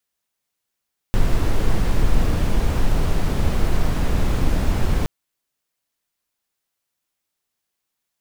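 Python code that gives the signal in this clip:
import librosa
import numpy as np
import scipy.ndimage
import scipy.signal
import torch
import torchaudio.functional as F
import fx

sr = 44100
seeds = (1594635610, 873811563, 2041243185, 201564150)

y = fx.noise_colour(sr, seeds[0], length_s=3.92, colour='brown', level_db=-16.0)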